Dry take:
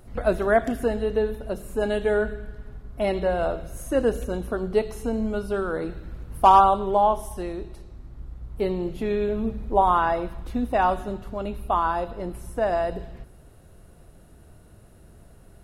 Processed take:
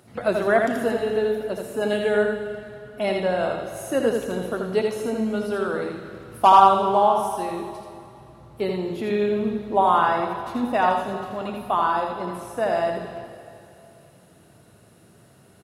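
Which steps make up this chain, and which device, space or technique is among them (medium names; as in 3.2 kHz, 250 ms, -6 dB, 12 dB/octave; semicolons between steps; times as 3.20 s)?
PA in a hall (high-pass 110 Hz 24 dB/octave; peaking EQ 3.8 kHz +5 dB 2.6 oct; delay 82 ms -4.5 dB; reverberation RT60 2.7 s, pre-delay 48 ms, DRR 8.5 dB); trim -1 dB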